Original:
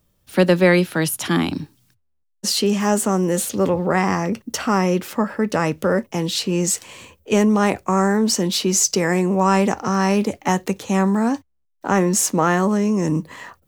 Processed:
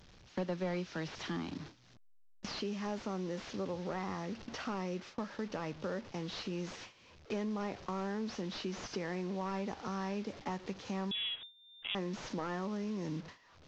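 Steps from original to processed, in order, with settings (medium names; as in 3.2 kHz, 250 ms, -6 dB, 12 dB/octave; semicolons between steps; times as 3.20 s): one-bit delta coder 32 kbps, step -27.5 dBFS; gate with hold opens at -20 dBFS; compression 2:1, threshold -45 dBFS, peak gain reduction 18.5 dB; 11.11–11.95 s: frequency inversion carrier 3.6 kHz; trim -4 dB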